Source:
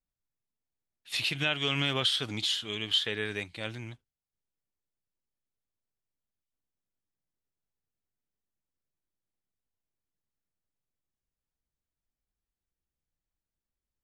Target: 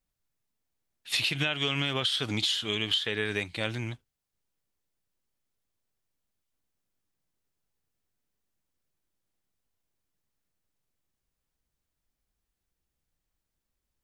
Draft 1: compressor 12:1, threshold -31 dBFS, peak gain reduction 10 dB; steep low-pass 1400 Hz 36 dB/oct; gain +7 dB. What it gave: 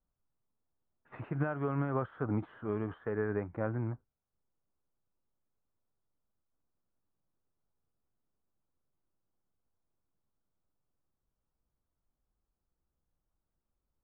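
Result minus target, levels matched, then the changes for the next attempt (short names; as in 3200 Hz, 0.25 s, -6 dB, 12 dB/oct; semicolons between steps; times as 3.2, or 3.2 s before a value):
1000 Hz band +6.5 dB
remove: steep low-pass 1400 Hz 36 dB/oct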